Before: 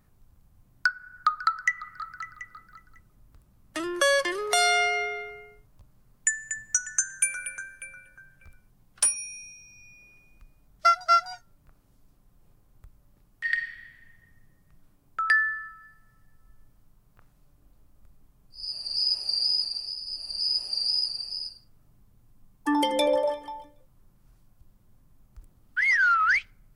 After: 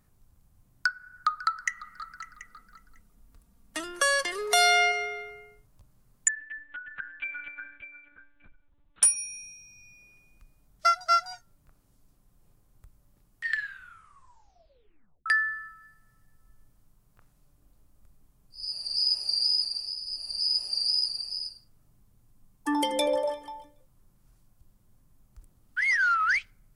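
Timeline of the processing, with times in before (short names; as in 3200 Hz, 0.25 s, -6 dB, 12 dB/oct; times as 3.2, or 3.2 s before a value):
1.59–4.92 comb 4.3 ms, depth 60%
6.28–9.03 monotone LPC vocoder at 8 kHz 290 Hz
13.45 tape stop 1.81 s
whole clip: bell 9000 Hz +5.5 dB 1.6 oct; gain -3 dB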